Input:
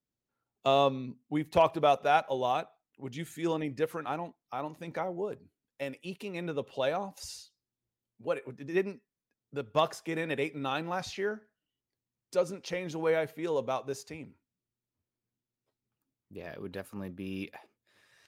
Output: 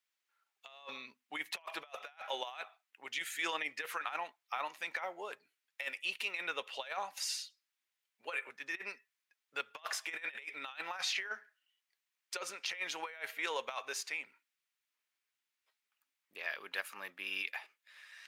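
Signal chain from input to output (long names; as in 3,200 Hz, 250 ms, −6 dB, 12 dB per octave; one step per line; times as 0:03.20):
high-pass filter 1,100 Hz 12 dB per octave
parametric band 2,200 Hz +8.5 dB 1.7 octaves
compressor whose output falls as the input rises −38 dBFS, ratio −0.5
level −1 dB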